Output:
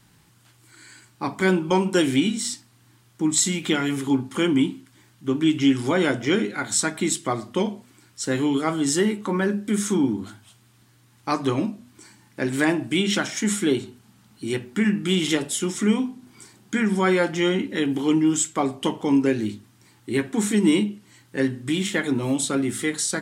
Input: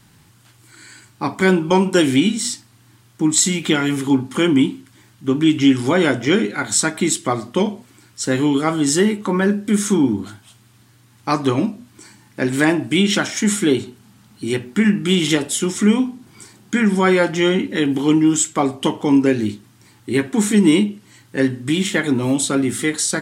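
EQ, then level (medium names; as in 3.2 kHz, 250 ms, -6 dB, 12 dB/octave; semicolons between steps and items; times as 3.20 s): hum notches 50/100/150/200/250 Hz; -5.0 dB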